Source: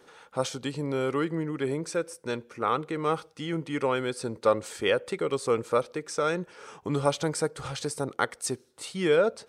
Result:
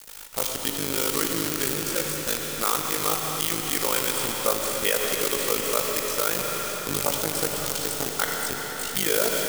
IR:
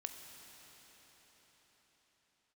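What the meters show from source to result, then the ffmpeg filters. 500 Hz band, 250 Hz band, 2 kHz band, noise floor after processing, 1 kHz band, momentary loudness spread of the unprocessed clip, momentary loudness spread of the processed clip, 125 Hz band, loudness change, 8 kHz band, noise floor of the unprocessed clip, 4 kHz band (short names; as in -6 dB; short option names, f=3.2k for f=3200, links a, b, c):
-1.5 dB, -1.5 dB, +5.0 dB, -33 dBFS, +1.5 dB, 8 LU, 4 LU, -3.0 dB, +5.0 dB, +13.5 dB, -60 dBFS, +10.0 dB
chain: -filter_complex "[0:a]highpass=140,bandreject=f=360:w=12,acrossover=split=3500[a][b];[b]acompressor=threshold=-48dB:ratio=6[c];[a][c]amix=inputs=2:normalize=0,acrusher=bits=6:dc=4:mix=0:aa=0.000001,tremolo=f=52:d=0.974,crystalizer=i=5.5:c=0[d];[1:a]atrim=start_sample=2205[e];[d][e]afir=irnorm=-1:irlink=0,alimiter=level_in=15.5dB:limit=-1dB:release=50:level=0:latency=1,volume=-6dB"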